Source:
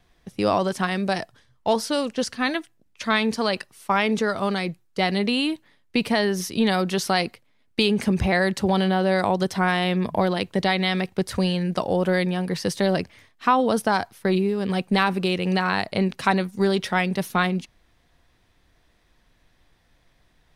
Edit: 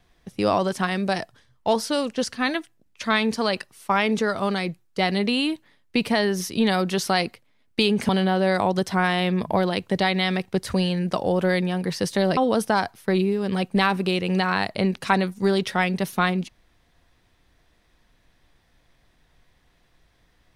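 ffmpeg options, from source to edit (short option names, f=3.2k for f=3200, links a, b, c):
-filter_complex "[0:a]asplit=3[a][b][c];[a]atrim=end=8.092[d];[b]atrim=start=8.728:end=13.012[e];[c]atrim=start=13.538[f];[d][e]acrossfade=d=0.004:c1=hsin:c2=hsin[g];[g][f]acrossfade=d=0.004:c1=hsin:c2=hsin"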